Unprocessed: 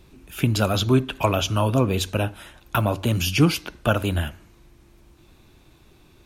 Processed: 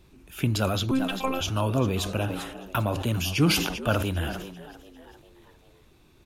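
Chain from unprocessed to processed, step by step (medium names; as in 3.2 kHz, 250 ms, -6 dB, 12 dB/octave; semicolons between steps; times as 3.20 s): 0.91–1.41 s: robot voice 264 Hz; on a send: frequency-shifting echo 396 ms, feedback 51%, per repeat +87 Hz, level -17 dB; on the sum: decay stretcher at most 49 dB/s; trim -5 dB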